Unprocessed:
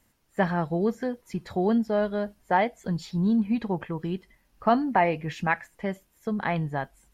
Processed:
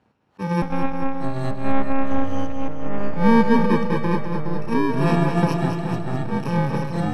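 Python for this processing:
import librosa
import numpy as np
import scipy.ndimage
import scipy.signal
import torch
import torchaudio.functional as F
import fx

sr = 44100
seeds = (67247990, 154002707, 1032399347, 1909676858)

y = fx.bit_reversed(x, sr, seeds[0], block=64)
y = scipy.signal.sosfilt(scipy.signal.butter(2, 120.0, 'highpass', fs=sr, output='sos'), y)
y = fx.peak_eq(y, sr, hz=750.0, db=5.5, octaves=0.63)
y = y + 10.0 ** (-9.5 / 20.0) * np.pad(y, (int(416 * sr / 1000.0), 0))[:len(y)]
y = fx.lpc_monotone(y, sr, seeds[1], pitch_hz=270.0, order=10, at=(0.62, 3.14))
y = fx.auto_swell(y, sr, attack_ms=131.0)
y = fx.echo_pitch(y, sr, ms=680, semitones=-5, count=3, db_per_echo=-6.0)
y = scipy.signal.sosfilt(scipy.signal.butter(2, 1900.0, 'lowpass', fs=sr, output='sos'), y)
y = fx.echo_feedback(y, sr, ms=211, feedback_pct=57, wet_db=-7.0)
y = F.gain(torch.from_numpy(y), 9.0).numpy()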